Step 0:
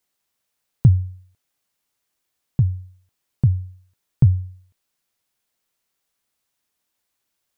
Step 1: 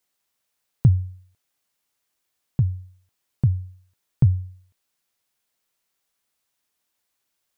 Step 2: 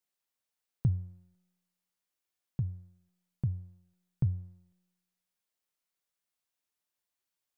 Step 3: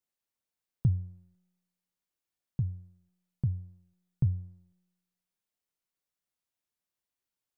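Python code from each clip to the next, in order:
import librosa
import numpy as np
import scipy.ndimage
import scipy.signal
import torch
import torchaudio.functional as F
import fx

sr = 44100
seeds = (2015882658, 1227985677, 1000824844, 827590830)

y1 = fx.low_shelf(x, sr, hz=360.0, db=-3.0)
y2 = fx.comb_fb(y1, sr, f0_hz=180.0, decay_s=1.1, harmonics='all', damping=0.0, mix_pct=70)
y2 = y2 * 10.0 ** (-2.0 / 20.0)
y3 = fx.low_shelf(y2, sr, hz=410.0, db=6.5)
y3 = y3 * 10.0 ** (-4.0 / 20.0)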